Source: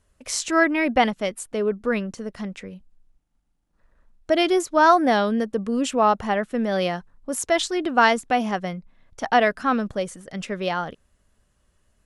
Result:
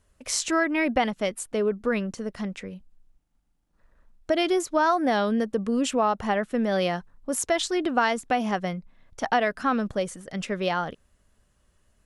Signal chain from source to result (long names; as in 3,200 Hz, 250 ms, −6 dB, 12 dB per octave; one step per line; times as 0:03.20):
downward compressor 3 to 1, threshold −20 dBFS, peak gain reduction 8 dB